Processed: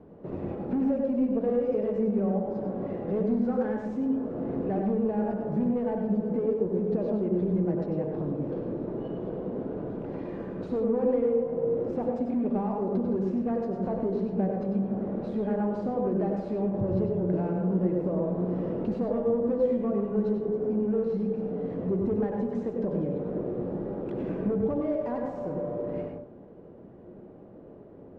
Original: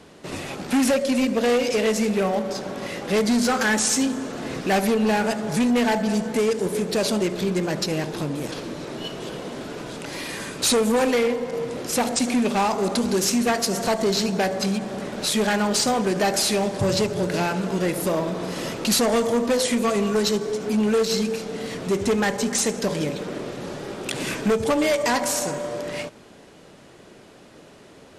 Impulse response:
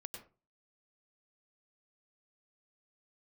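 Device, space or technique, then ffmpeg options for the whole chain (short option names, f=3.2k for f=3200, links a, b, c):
television next door: -filter_complex "[0:a]acompressor=threshold=-26dB:ratio=3,lowpass=600[a];[1:a]atrim=start_sample=2205[b];[a][b]afir=irnorm=-1:irlink=0,volume=4.5dB"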